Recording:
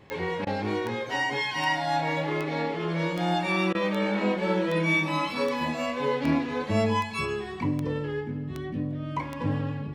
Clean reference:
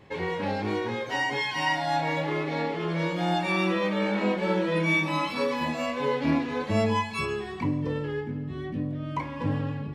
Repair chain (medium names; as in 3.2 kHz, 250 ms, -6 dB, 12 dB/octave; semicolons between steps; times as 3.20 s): de-click; interpolate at 0.45/3.73 s, 17 ms